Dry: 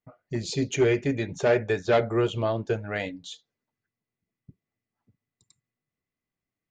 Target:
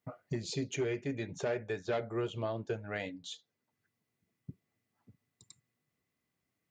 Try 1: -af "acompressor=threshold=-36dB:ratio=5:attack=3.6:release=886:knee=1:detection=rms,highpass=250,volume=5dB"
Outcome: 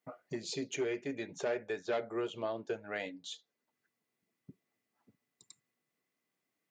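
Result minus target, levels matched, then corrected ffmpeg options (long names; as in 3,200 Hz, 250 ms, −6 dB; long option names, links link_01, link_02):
125 Hz band −10.5 dB
-af "acompressor=threshold=-36dB:ratio=5:attack=3.6:release=886:knee=1:detection=rms,highpass=70,volume=5dB"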